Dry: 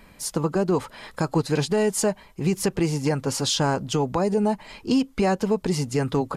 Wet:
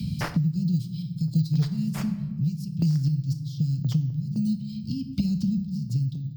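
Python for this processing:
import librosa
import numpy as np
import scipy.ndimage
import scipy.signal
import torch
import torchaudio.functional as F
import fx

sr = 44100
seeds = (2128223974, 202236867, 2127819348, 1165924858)

p1 = fx.fade_out_tail(x, sr, length_s=0.9)
p2 = scipy.signal.sosfilt(scipy.signal.ellip(3, 1.0, 50, [150.0, 5200.0], 'bandstop', fs=sr, output='sos'), p1)
p3 = fx.high_shelf(p2, sr, hz=2500.0, db=9.0)
p4 = fx.tremolo_random(p3, sr, seeds[0], hz=3.9, depth_pct=95)
p5 = scipy.signal.sosfilt(scipy.signal.butter(4, 86.0, 'highpass', fs=sr, output='sos'), p4)
p6 = 10.0 ** (-23.5 / 20.0) * (np.abs((p5 / 10.0 ** (-23.5 / 20.0) + 3.0) % 4.0 - 2.0) - 1.0)
p7 = p5 + F.gain(torch.from_numpy(p6), -6.0).numpy()
p8 = fx.air_absorb(p7, sr, metres=420.0)
p9 = fx.room_shoebox(p8, sr, seeds[1], volume_m3=190.0, walls='mixed', distance_m=0.4)
p10 = np.repeat(scipy.signal.resample_poly(p9, 1, 2), 2)[:len(p9)]
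p11 = fx.band_squash(p10, sr, depth_pct=100)
y = F.gain(torch.from_numpy(p11), 8.5).numpy()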